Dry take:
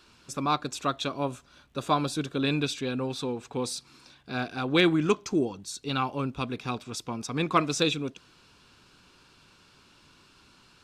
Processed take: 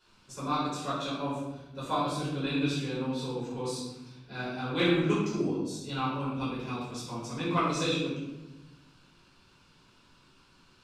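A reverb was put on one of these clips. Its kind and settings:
rectangular room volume 420 cubic metres, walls mixed, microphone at 4.9 metres
level −15 dB

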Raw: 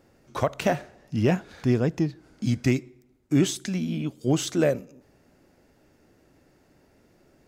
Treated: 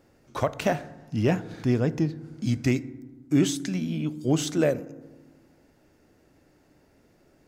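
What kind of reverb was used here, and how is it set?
feedback delay network reverb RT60 1.3 s, low-frequency decay 1.45×, high-frequency decay 0.3×, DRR 15.5 dB
level −1 dB

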